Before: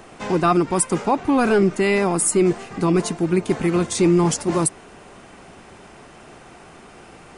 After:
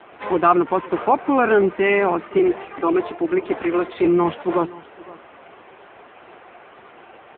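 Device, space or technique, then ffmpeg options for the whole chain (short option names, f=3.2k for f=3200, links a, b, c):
satellite phone: -filter_complex "[0:a]asettb=1/sr,asplit=3[a][b][c];[a]atrim=end=2.394[d];[b]atrim=start=2.39:end=4.05,asetpts=PTS-STARTPTS,afade=t=in:d=0.004:c=qsin,afade=t=out:st=1.656:d=0.004:c=qsin,highpass=f=220:w=0.5412,highpass=f=220:w=1.3066[e];[c]atrim=start=4.046[f];[d][e]acrossfade=d=0.004:c1=hsin:c2=qsin[g];[g][f]acrossfade=d=0.004:c1=qsin:c2=hsin,highpass=370,lowpass=3.1k,aecho=1:1:518:0.1,volume=4.5dB" -ar 8000 -c:a libopencore_amrnb -b:a 6700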